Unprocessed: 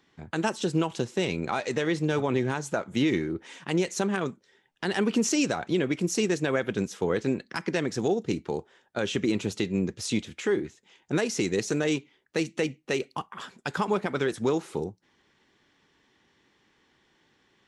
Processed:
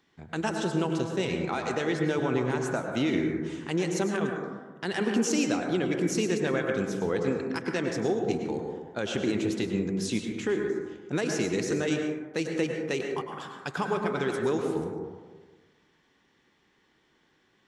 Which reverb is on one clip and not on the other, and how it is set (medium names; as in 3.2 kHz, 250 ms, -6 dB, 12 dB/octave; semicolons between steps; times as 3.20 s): plate-style reverb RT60 1.4 s, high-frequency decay 0.25×, pre-delay 90 ms, DRR 2.5 dB; trim -3 dB